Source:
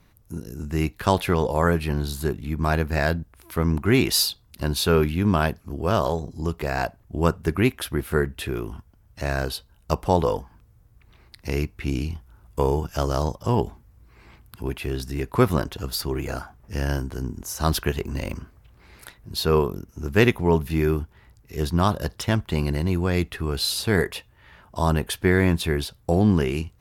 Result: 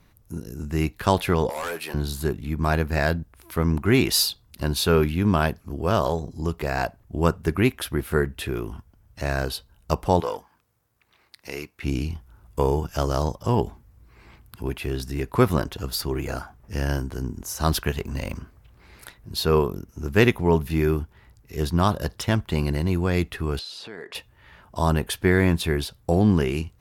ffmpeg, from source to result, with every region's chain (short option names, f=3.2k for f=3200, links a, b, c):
-filter_complex "[0:a]asettb=1/sr,asplit=3[a][b][c];[a]atrim=end=1.494[d];[b]atrim=start=1.49:end=1.94,asetpts=PTS-STARTPTS,afade=t=in:d=0.004:c=qsin,afade=t=out:st=0.446:d=0.004:c=qsin,highpass=510,highshelf=f=5.6k:g=7,volume=26dB,asoftclip=hard,volume=-26dB[e];[c]atrim=start=1.936[f];[d][e]acrossfade=d=0.004:c1=hsin:c2=qsin[g];[g][f]acrossfade=d=0.004:c1=qsin:c2=hsin,asettb=1/sr,asplit=3[h][i][j];[h]atrim=end=10.204[k];[i]atrim=start=10.2:end=11.83,asetpts=PTS-STARTPTS,afade=t=in:d=0.004:c=qsin,afade=t=out:st=1.626:d=0.004:c=qsin,aeval=exprs='if(lt(val(0),0),0.708*val(0),val(0))':c=same,highpass=f=680:p=1[l];[j]atrim=start=11.826[m];[k][l]acrossfade=d=0.004:c1=hsin:c2=qsin[n];[n][m]acrossfade=d=0.004:c1=qsin:c2=hsin,asettb=1/sr,asplit=3[o][p][q];[o]atrim=end=17.824[r];[p]atrim=start=17.82:end=18.38,asetpts=PTS-STARTPTS,afade=t=in:d=0.004:c=qsin,afade=t=out:st=0.556:d=0.004:c=qsin,equalizer=f=340:t=o:w=0.44:g=-5,aeval=exprs='sgn(val(0))*max(abs(val(0))-0.00211,0)':c=same[s];[q]atrim=start=18.376[t];[r][s]acrossfade=d=0.004:c1=hsin:c2=qsin[u];[u][t]acrossfade=d=0.004:c1=qsin:c2=hsin,asettb=1/sr,asplit=3[v][w][x];[v]atrim=end=23.594[y];[w]atrim=start=23.59:end=24.15,asetpts=PTS-STARTPTS,afade=t=in:d=0.004:c=qsin,afade=t=out:st=0.556:d=0.004:c=qsin,acompressor=threshold=-31dB:ratio=8:attack=3.2:release=140:knee=1:detection=peak,highpass=270,lowpass=4.9k[z];[x]atrim=start=24.146[aa];[y][z]acrossfade=d=0.004:c1=hsin:c2=qsin[ab];[ab][aa]acrossfade=d=0.004:c1=qsin:c2=hsin"